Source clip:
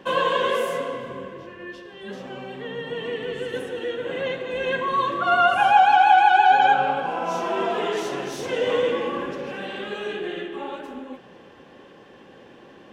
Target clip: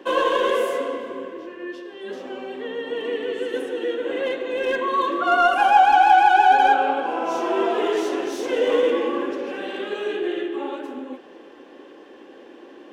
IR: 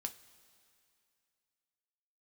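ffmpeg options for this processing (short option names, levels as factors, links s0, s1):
-filter_complex "[0:a]lowshelf=f=210:t=q:w=3:g=-12.5,acrossover=split=2200[s0][s1];[s1]aeval=exprs='clip(val(0),-1,0.0178)':c=same[s2];[s0][s2]amix=inputs=2:normalize=0"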